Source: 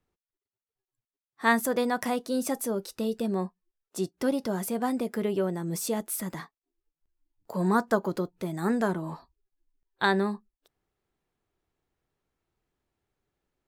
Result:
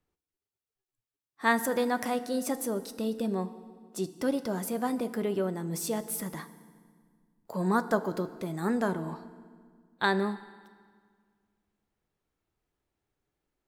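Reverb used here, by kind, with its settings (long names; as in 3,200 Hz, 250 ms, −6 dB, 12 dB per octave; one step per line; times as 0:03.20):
feedback delay network reverb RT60 1.8 s, low-frequency decay 1.4×, high-frequency decay 0.8×, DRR 12.5 dB
level −2 dB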